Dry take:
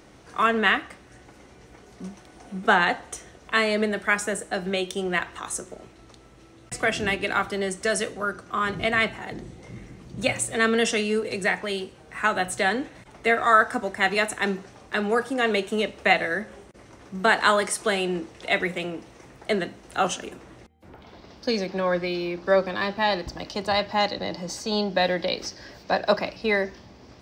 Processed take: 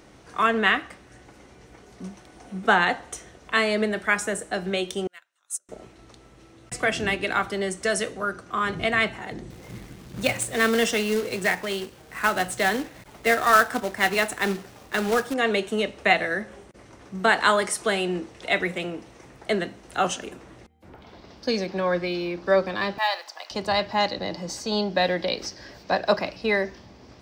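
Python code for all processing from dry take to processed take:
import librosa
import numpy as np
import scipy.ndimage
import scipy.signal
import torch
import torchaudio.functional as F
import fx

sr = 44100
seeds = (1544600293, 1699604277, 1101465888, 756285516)

y = fx.chain(x, sr, fx.differentiator(),
    fx.small_body(hz=(590.0, 1400.0), ring_ms=30, db=10),
    fx.upward_expand(threshold_db=-43.0, expansion=2.5), at=(5.07, 5.69))
y = fx.chain(y, sr, fx.quant_companded(bits=4),
    fx.high_shelf(hz=9000.0, db=-3.5), at=(9.5, 15.34))
y = fx.chain(y, sr, fx.block_float(bits=7),
    fx.highpass(hz=700.0, slope=24), at=(22.98, 23.51))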